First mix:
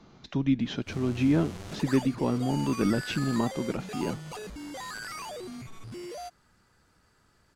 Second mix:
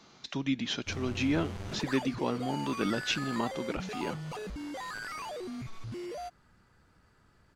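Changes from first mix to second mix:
speech: add spectral tilt +3 dB per octave
background: add bass and treble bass +3 dB, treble −7 dB

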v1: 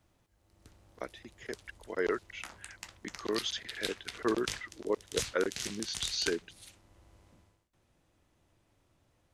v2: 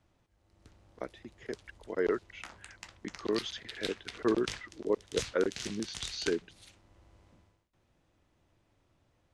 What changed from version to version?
speech: add tilt shelving filter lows +4 dB, about 790 Hz
master: add high-frequency loss of the air 52 metres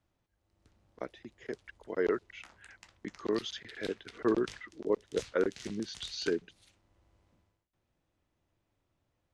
background −8.0 dB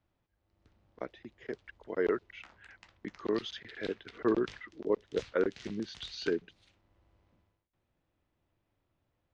master: add low-pass filter 4,300 Hz 12 dB per octave

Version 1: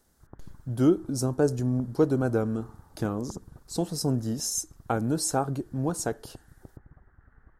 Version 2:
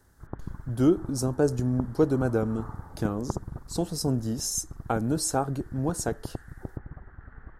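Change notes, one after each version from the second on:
background +11.0 dB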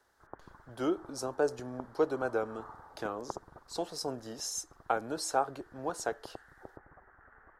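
background: add high-frequency loss of the air 420 metres
master: add three-way crossover with the lows and the highs turned down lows −22 dB, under 430 Hz, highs −12 dB, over 5,100 Hz

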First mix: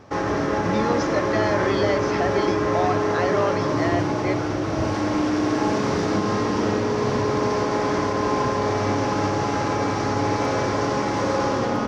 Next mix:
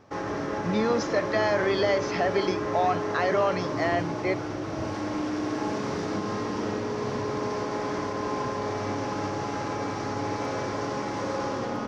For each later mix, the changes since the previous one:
background −7.5 dB
master: add parametric band 66 Hz −4 dB 1.1 octaves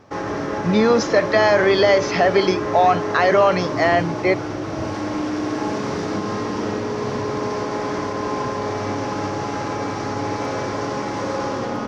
speech +9.5 dB
background +5.5 dB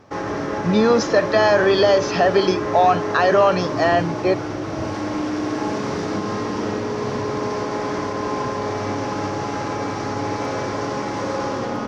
speech: add Butterworth band-reject 2,100 Hz, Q 5

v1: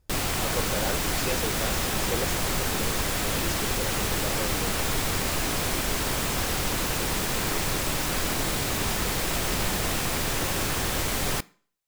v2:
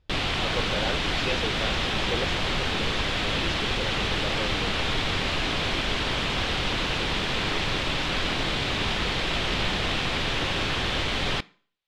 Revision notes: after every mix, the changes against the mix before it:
master: add low-pass with resonance 3,400 Hz, resonance Q 2.2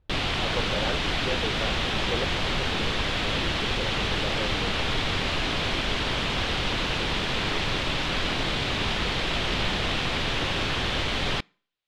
speech: add low-pass filter 1,600 Hz
background: send −8.5 dB

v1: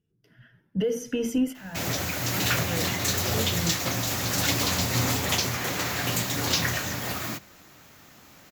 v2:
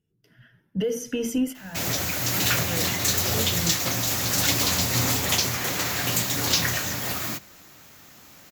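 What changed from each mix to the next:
master: add high-shelf EQ 4,000 Hz +5.5 dB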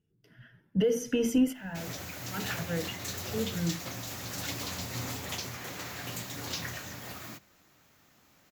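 background −11.5 dB
master: add high-shelf EQ 4,000 Hz −5.5 dB

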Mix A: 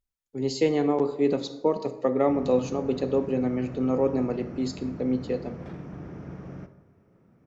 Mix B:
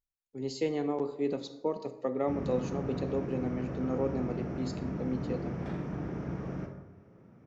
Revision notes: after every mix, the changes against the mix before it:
speech −8.0 dB
background: send +9.0 dB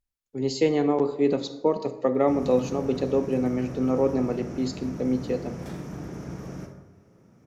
speech +9.0 dB
background: remove low-pass filter 2,700 Hz 12 dB per octave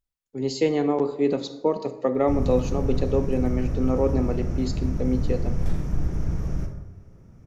background: remove high-pass filter 200 Hz 12 dB per octave

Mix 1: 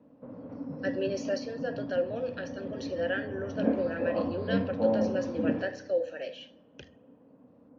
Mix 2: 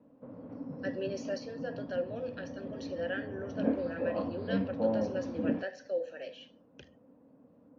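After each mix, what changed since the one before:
speech −4.5 dB
reverb: off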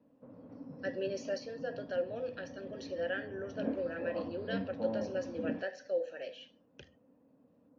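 background −6.0 dB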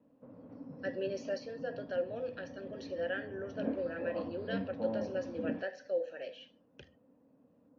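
speech: add high-frequency loss of the air 73 metres

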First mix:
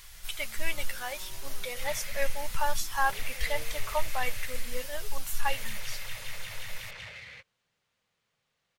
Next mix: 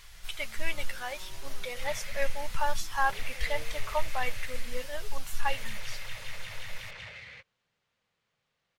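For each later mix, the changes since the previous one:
master: add high-shelf EQ 8,300 Hz −11 dB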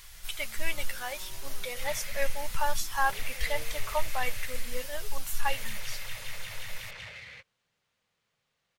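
master: add high-shelf EQ 8,300 Hz +11 dB

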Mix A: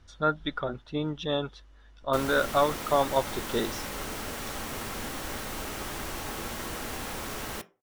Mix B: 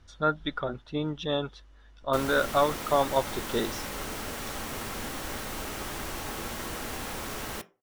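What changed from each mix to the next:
nothing changed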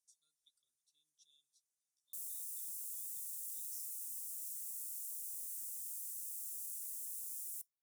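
master: add inverse Chebyshev high-pass filter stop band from 2,000 Hz, stop band 70 dB

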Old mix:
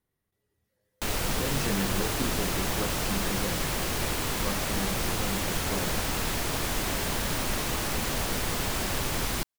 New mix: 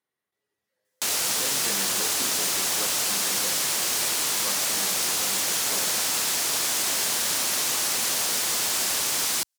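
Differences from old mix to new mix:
background: add bass and treble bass +2 dB, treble +13 dB
master: add meter weighting curve A

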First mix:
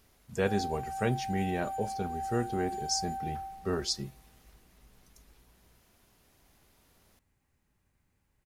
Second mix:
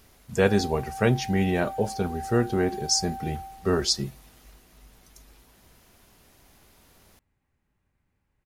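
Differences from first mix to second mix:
speech +8.0 dB
background: add bass and treble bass 0 dB, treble −9 dB

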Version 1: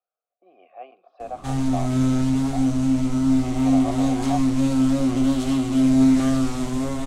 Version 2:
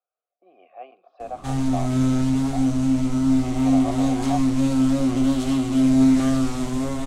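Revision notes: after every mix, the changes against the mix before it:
nothing changed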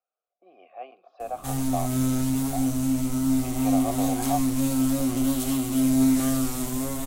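background −4.5 dB
master: remove high-frequency loss of the air 100 metres

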